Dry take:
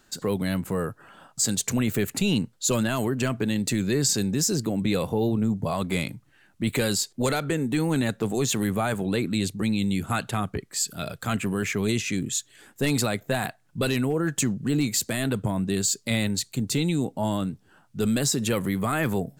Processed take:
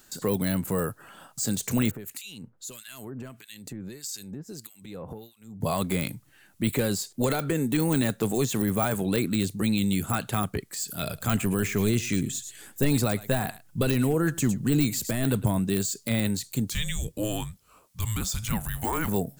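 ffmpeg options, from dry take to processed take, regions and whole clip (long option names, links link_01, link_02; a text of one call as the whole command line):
ffmpeg -i in.wav -filter_complex "[0:a]asettb=1/sr,asplit=3[link_01][link_02][link_03];[link_01]atrim=end=1.914[link_04];[link_02]atrim=start=1.91:end=5.61,asetpts=PTS-STARTPTS,afade=type=in:duration=0.004:curve=qsin,afade=type=out:start_time=3.696:duration=0.004:curve=qsin,acompressor=threshold=-32dB:ratio=16:attack=3.2:release=140:knee=1:detection=peak,acrossover=split=1600[link_05][link_06];[link_05]aeval=exprs='val(0)*(1-1/2+1/2*cos(2*PI*1.6*n/s))':channel_layout=same[link_07];[link_06]aeval=exprs='val(0)*(1-1/2-1/2*cos(2*PI*1.6*n/s))':channel_layout=same[link_08];[link_07][link_08]amix=inputs=2:normalize=0[link_09];[link_03]atrim=start=5.606[link_10];[link_04][link_09]acrossfade=duration=0.004:curve1=hsin:curve2=qsin[link_11];[link_11][link_10]acrossfade=duration=0.004:curve1=qsin:curve2=hsin,asettb=1/sr,asplit=3[link_12][link_13][link_14];[link_12]atrim=end=11.034[link_15];[link_13]atrim=start=11.03:end=15.59,asetpts=PTS-STARTPTS,afade=type=in:duration=0.004:curve=qsin,afade=type=out:start_time=4.556:duration=0.004:curve=qsin,lowshelf=frequency=75:gain=9.5,aecho=1:1:107:0.0891,atrim=end_sample=201096[link_16];[link_14]atrim=start=15.586[link_17];[link_15][link_16]acrossfade=duration=0.004:curve1=hsin:curve2=qsin[link_18];[link_18][link_17]acrossfade=duration=0.004:curve1=qsin:curve2=hsin,asettb=1/sr,asplit=3[link_19][link_20][link_21];[link_19]atrim=end=16.704[link_22];[link_20]atrim=start=16.7:end=19.08,asetpts=PTS-STARTPTS,afade=type=in:duration=0.004:curve=qsin,afade=type=out:start_time=2.376:duration=0.004:curve=qsin,highpass=310,afreqshift=-330[link_23];[link_21]atrim=start=19.076[link_24];[link_22][link_23]acrossfade=duration=0.004:curve1=hsin:curve2=qsin[link_25];[link_25][link_24]acrossfade=duration=0.004:curve1=qsin:curve2=hsin,deesser=0.85,aemphasis=mode=production:type=50kf" out.wav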